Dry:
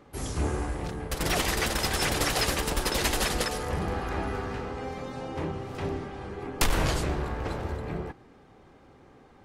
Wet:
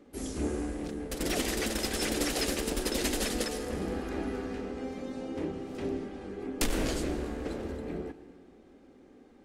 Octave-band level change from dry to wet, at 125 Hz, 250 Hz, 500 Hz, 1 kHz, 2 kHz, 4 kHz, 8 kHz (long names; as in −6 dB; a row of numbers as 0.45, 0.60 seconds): −8.5, +1.5, −1.5, −9.0, −6.5, −5.0, −3.0 decibels